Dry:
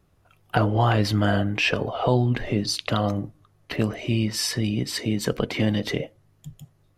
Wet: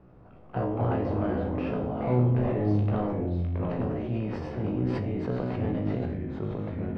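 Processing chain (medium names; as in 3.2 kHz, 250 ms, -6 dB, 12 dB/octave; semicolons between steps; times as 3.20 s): spectral levelling over time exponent 0.6; Bessel low-pass 770 Hz, order 2; hum notches 50/100 Hz; feedback comb 62 Hz, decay 0.53 s, harmonics all, mix 90%; ever faster or slower copies 128 ms, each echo -3 st, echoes 2; decay stretcher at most 22 dB/s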